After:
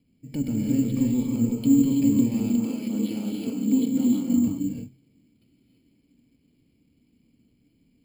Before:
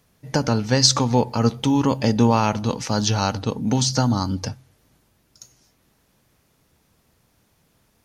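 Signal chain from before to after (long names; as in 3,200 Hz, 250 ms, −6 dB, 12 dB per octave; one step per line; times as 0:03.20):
one-sided soft clipper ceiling −17 dBFS
0:02.34–0:04.37: high-pass filter 210 Hz 24 dB per octave
brickwall limiter −15 dBFS, peak gain reduction 11 dB
formant resonators in series i
reverb whose tail is shaped and stops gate 370 ms rising, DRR −1.5 dB
bad sample-rate conversion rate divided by 6×, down filtered, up hold
level +6.5 dB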